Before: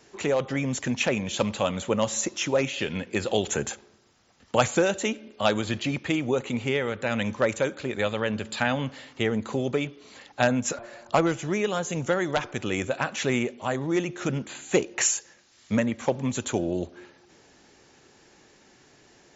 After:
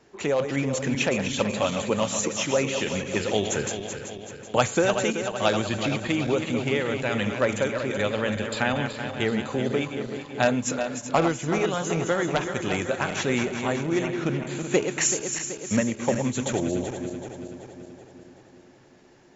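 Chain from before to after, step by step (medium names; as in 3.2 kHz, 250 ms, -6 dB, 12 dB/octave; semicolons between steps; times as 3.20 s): backward echo that repeats 190 ms, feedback 75%, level -7.5 dB; 14.06–14.47 s: low-pass 4.6 kHz 12 dB/octave; tape noise reduction on one side only decoder only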